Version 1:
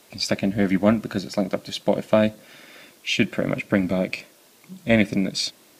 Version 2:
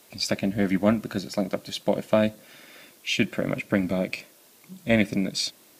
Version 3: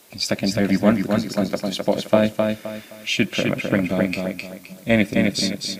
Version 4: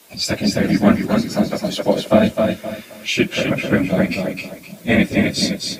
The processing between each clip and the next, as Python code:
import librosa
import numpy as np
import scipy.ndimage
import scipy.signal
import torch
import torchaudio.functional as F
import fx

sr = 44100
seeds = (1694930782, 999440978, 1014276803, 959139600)

y1 = fx.high_shelf(x, sr, hz=10000.0, db=7.0)
y1 = F.gain(torch.from_numpy(y1), -3.0).numpy()
y2 = fx.echo_feedback(y1, sr, ms=260, feedback_pct=30, wet_db=-4)
y2 = F.gain(torch.from_numpy(y2), 3.5).numpy()
y3 = fx.phase_scramble(y2, sr, seeds[0], window_ms=50)
y3 = F.gain(torch.from_numpy(y3), 3.0).numpy()